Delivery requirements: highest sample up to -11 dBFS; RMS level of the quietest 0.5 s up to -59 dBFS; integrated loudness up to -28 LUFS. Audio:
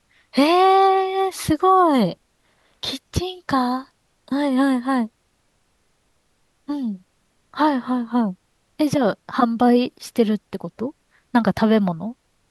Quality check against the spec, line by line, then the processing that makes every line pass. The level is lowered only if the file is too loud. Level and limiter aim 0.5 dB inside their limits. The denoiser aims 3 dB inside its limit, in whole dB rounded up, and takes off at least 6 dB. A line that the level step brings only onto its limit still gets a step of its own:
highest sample -5.0 dBFS: fail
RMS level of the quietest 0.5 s -65 dBFS: pass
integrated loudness -20.5 LUFS: fail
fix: trim -8 dB

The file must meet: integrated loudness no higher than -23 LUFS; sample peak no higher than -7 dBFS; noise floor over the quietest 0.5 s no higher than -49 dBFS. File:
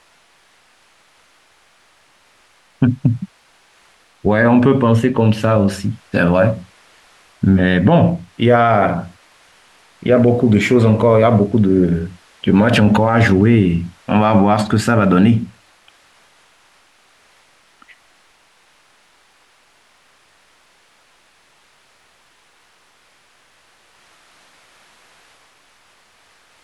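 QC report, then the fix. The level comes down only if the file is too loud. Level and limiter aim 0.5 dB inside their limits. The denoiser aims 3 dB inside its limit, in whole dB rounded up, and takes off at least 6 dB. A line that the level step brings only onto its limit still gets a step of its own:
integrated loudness -14.5 LUFS: fail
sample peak -2.5 dBFS: fail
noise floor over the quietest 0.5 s -54 dBFS: pass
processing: trim -9 dB

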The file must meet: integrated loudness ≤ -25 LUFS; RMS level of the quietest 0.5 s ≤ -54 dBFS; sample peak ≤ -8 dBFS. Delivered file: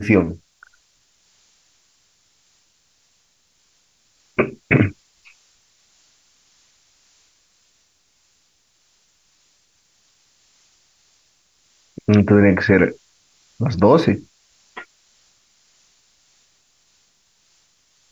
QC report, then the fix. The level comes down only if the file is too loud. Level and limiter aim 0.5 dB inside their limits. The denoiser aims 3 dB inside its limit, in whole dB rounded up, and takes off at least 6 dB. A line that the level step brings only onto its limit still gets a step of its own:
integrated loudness -17.5 LUFS: fail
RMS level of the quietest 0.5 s -62 dBFS: pass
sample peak -1.5 dBFS: fail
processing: trim -8 dB

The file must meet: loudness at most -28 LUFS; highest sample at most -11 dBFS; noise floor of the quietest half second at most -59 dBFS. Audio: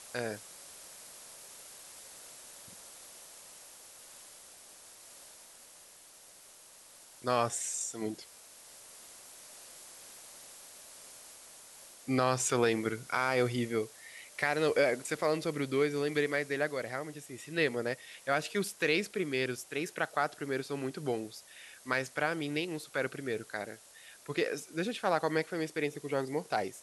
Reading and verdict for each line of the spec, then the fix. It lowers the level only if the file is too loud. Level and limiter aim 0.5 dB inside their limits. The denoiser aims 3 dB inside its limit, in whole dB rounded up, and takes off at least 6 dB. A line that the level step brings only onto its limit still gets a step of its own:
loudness -33.0 LUFS: pass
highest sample -13.5 dBFS: pass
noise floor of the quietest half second -56 dBFS: fail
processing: noise reduction 6 dB, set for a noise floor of -56 dBFS

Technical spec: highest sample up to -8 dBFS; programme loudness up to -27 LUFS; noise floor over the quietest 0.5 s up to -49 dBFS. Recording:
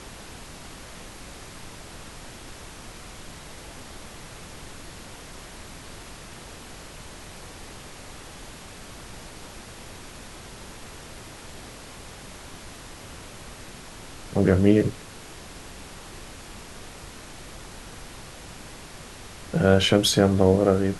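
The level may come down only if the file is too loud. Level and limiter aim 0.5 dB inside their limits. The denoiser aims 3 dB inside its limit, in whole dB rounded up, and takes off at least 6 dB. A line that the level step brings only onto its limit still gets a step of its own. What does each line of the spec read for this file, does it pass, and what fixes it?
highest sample -4.5 dBFS: fail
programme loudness -20.5 LUFS: fail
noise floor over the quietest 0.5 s -42 dBFS: fail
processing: noise reduction 6 dB, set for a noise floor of -42 dBFS; trim -7 dB

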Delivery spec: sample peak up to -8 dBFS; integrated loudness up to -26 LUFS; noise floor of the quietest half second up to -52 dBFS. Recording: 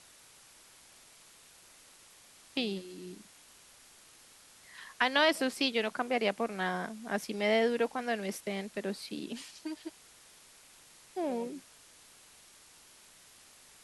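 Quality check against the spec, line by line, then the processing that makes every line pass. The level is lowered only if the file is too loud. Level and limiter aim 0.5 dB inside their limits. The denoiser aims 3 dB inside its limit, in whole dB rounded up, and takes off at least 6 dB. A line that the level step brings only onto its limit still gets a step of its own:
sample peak -12.0 dBFS: pass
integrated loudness -33.0 LUFS: pass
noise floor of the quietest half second -58 dBFS: pass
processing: none needed

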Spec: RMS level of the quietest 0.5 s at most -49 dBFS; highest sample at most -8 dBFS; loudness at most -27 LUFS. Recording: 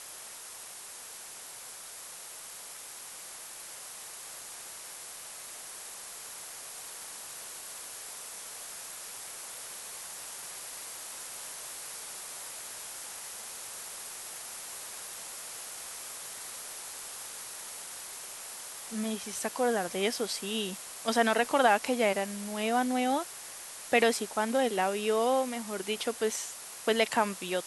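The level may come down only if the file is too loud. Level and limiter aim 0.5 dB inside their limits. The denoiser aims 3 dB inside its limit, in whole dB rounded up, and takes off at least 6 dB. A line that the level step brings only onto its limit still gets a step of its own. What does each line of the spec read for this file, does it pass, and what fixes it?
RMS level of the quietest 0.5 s -46 dBFS: fail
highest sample -10.0 dBFS: pass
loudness -34.0 LUFS: pass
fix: noise reduction 6 dB, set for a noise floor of -46 dBFS

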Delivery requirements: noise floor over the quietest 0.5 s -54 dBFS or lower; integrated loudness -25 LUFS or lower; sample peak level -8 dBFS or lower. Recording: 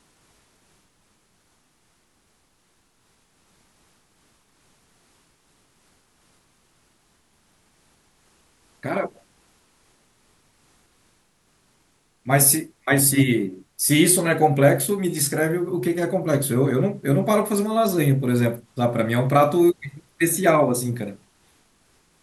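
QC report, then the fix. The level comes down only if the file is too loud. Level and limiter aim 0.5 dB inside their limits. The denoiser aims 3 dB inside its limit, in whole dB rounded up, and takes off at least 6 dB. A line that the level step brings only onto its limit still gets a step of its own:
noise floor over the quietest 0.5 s -64 dBFS: pass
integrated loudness -20.0 LUFS: fail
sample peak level -4.0 dBFS: fail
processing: trim -5.5 dB

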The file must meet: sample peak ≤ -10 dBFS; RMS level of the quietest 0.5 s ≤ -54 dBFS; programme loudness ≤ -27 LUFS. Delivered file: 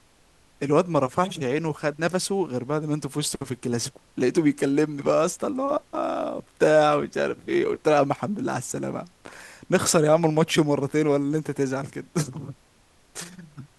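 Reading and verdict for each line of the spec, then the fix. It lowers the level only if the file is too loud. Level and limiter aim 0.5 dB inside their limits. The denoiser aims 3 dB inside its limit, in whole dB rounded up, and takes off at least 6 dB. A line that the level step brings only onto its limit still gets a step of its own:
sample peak -4.5 dBFS: fail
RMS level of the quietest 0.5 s -59 dBFS: pass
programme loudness -24.0 LUFS: fail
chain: trim -3.5 dB; peak limiter -10.5 dBFS

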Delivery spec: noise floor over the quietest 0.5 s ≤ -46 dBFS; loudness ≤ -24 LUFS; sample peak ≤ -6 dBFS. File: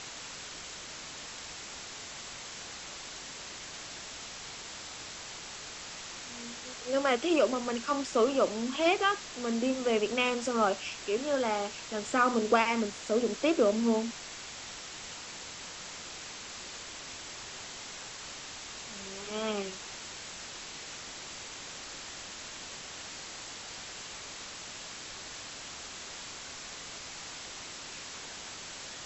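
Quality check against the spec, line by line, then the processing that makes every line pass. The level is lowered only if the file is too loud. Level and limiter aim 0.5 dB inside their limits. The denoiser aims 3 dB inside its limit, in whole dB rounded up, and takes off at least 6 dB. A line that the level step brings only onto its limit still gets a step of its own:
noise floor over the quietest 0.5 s -44 dBFS: fail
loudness -34.0 LUFS: pass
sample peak -12.5 dBFS: pass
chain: noise reduction 6 dB, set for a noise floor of -44 dBFS

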